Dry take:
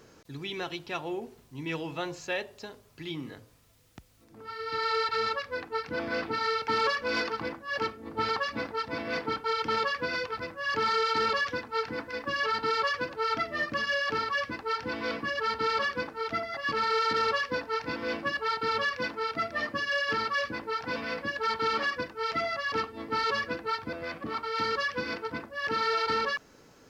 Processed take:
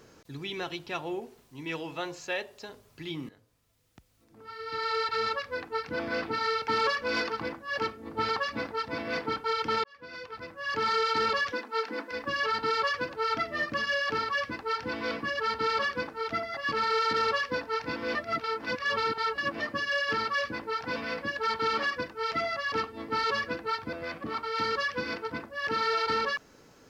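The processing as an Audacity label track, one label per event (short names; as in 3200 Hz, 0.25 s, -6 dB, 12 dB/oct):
1.200000	2.690000	bell 81 Hz -7 dB 2.9 oct
3.290000	5.330000	fade in, from -14 dB
9.840000	10.930000	fade in
11.520000	12.110000	steep high-pass 210 Hz
18.150000	19.600000	reverse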